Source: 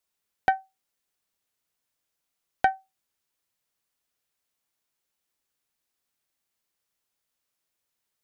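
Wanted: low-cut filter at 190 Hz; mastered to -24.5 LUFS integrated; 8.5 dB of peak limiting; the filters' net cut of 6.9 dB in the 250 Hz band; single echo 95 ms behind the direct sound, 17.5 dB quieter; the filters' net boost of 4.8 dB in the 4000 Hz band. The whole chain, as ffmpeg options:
-af "highpass=190,equalizer=f=250:t=o:g=-8,equalizer=f=4k:t=o:g=6.5,alimiter=limit=-16.5dB:level=0:latency=1,aecho=1:1:95:0.133,volume=10.5dB"

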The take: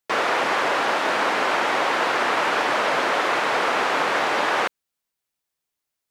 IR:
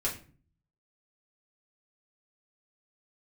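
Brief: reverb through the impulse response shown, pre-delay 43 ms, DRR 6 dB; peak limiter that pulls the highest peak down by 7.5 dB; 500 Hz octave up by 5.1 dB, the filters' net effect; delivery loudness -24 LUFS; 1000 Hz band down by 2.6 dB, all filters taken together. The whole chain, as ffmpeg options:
-filter_complex "[0:a]equalizer=f=500:t=o:g=8,equalizer=f=1k:t=o:g=-6,alimiter=limit=-16dB:level=0:latency=1,asplit=2[a][b];[1:a]atrim=start_sample=2205,adelay=43[c];[b][c]afir=irnorm=-1:irlink=0,volume=-11.5dB[d];[a][d]amix=inputs=2:normalize=0,volume=-0.5dB"

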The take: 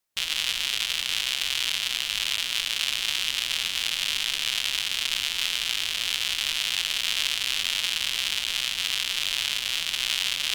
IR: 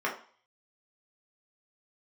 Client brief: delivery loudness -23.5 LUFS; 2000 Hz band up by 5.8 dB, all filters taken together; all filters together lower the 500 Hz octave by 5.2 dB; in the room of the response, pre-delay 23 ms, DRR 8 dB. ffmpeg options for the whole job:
-filter_complex "[0:a]equalizer=f=500:t=o:g=-7.5,equalizer=f=2k:t=o:g=8,asplit=2[a][b];[1:a]atrim=start_sample=2205,adelay=23[c];[b][c]afir=irnorm=-1:irlink=0,volume=-18dB[d];[a][d]amix=inputs=2:normalize=0,volume=-2dB"

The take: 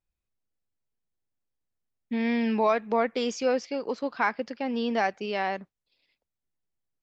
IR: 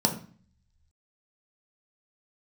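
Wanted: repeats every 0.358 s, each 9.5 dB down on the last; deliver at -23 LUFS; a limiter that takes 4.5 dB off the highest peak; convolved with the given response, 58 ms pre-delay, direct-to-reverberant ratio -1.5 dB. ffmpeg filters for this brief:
-filter_complex "[0:a]alimiter=limit=-16.5dB:level=0:latency=1,aecho=1:1:358|716|1074|1432:0.335|0.111|0.0365|0.012,asplit=2[a][b];[1:a]atrim=start_sample=2205,adelay=58[c];[b][c]afir=irnorm=-1:irlink=0,volume=-9.5dB[d];[a][d]amix=inputs=2:normalize=0,volume=-3dB"

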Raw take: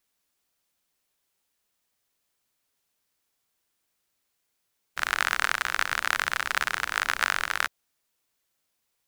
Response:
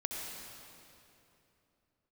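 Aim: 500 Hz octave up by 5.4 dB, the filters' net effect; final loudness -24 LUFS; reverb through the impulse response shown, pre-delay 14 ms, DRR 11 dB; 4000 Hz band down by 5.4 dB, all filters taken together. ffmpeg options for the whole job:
-filter_complex "[0:a]equalizer=f=500:t=o:g=7,equalizer=f=4k:t=o:g=-7.5,asplit=2[a][b];[1:a]atrim=start_sample=2205,adelay=14[c];[b][c]afir=irnorm=-1:irlink=0,volume=-13.5dB[d];[a][d]amix=inputs=2:normalize=0,volume=3dB"

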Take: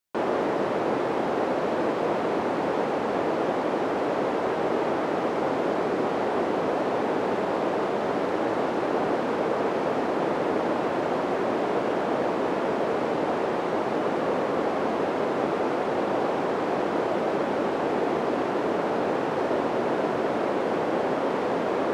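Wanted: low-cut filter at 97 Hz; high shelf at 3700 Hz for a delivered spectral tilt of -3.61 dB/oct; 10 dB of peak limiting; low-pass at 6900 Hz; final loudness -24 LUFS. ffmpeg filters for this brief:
-af "highpass=97,lowpass=6.9k,highshelf=f=3.7k:g=8,volume=6dB,alimiter=limit=-15.5dB:level=0:latency=1"

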